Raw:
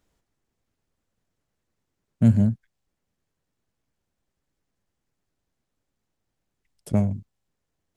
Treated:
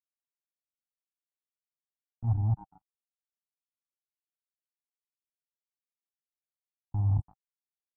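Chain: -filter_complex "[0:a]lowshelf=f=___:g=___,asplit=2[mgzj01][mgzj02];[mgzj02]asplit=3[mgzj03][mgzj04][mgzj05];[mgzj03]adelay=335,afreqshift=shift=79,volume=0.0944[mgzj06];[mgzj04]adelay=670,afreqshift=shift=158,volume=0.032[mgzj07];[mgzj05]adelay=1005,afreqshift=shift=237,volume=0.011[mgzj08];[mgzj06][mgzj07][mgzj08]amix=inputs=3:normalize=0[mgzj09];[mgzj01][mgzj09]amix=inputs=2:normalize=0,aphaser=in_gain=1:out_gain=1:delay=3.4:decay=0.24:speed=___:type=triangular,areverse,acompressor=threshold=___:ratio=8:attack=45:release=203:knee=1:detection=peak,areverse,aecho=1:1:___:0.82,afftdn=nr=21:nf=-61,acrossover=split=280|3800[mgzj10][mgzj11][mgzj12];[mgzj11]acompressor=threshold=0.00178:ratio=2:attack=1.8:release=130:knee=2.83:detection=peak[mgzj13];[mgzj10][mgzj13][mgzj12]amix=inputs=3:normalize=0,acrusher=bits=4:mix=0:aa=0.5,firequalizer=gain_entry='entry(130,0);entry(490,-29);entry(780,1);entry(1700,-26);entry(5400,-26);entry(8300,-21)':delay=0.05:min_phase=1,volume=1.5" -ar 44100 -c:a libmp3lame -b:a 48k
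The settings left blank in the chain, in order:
280, 3.5, 0.55, 0.0282, 2.6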